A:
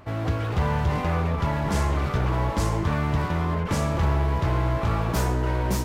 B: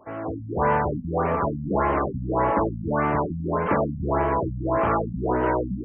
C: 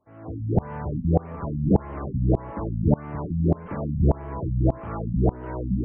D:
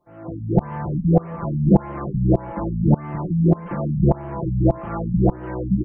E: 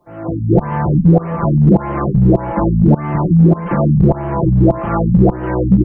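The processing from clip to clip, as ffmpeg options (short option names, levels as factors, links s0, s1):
-filter_complex "[0:a]dynaudnorm=f=230:g=3:m=2.66,acrossover=split=240 2300:gain=0.126 1 0.0631[s0][s1][s2];[s0][s1][s2]amix=inputs=3:normalize=0,afftfilt=real='re*lt(b*sr/1024,250*pow(3300/250,0.5+0.5*sin(2*PI*1.7*pts/sr)))':imag='im*lt(b*sr/1024,250*pow(3300/250,0.5+0.5*sin(2*PI*1.7*pts/sr)))':win_size=1024:overlap=0.75"
-af "bass=f=250:g=11,treble=f=4000:g=-1,areverse,acompressor=mode=upward:threshold=0.0316:ratio=2.5,areverse,aeval=exprs='val(0)*pow(10,-26*if(lt(mod(-1.7*n/s,1),2*abs(-1.7)/1000),1-mod(-1.7*n/s,1)/(2*abs(-1.7)/1000),(mod(-1.7*n/s,1)-2*abs(-1.7)/1000)/(1-2*abs(-1.7)/1000))/20)':c=same,volume=1.41"
-af "aecho=1:1:5.8:0.84,volume=1.26"
-filter_complex "[0:a]acrossover=split=160[s0][s1];[s0]asoftclip=type=hard:threshold=0.0794[s2];[s2][s1]amix=inputs=2:normalize=0,alimiter=level_in=3.98:limit=0.891:release=50:level=0:latency=1,volume=0.891"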